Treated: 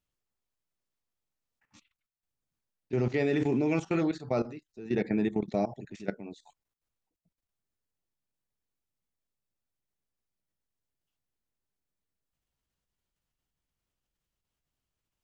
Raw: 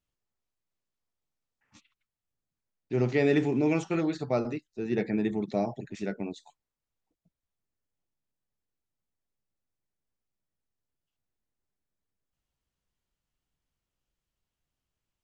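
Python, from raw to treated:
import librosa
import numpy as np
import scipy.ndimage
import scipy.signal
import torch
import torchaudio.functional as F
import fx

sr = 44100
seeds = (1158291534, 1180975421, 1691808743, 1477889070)

y = fx.level_steps(x, sr, step_db=15)
y = y * 10.0 ** (3.5 / 20.0)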